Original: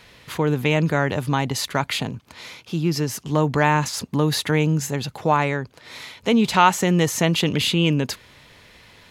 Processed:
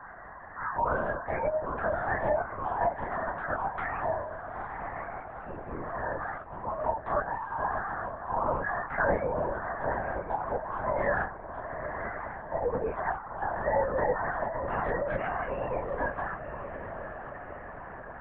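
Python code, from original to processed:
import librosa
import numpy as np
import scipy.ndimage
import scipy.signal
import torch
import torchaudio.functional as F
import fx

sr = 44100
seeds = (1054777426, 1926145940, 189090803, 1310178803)

y = fx.tracing_dist(x, sr, depth_ms=0.067)
y = scipy.signal.sosfilt(scipy.signal.cheby1(3, 1.0, [620.0, 1700.0], 'bandpass', fs=sr, output='sos'), y)
y = fx.spec_gate(y, sr, threshold_db=-15, keep='strong')
y = fx.tilt_eq(y, sr, slope=-4.0)
y = fx.over_compress(y, sr, threshold_db=-28.0, ratio=-0.5)
y = fx.transient(y, sr, attack_db=1, sustain_db=7)
y = fx.stretch_vocoder(y, sr, factor=2.0)
y = fx.chorus_voices(y, sr, voices=2, hz=0.58, base_ms=29, depth_ms=3.5, mix_pct=50)
y = fx.doubler(y, sr, ms=19.0, db=-8.0)
y = fx.echo_diffused(y, sr, ms=911, feedback_pct=47, wet_db=-12.0)
y = fx.lpc_vocoder(y, sr, seeds[0], excitation='whisper', order=10)
y = fx.band_squash(y, sr, depth_pct=40)
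y = y * librosa.db_to_amplitude(2.5)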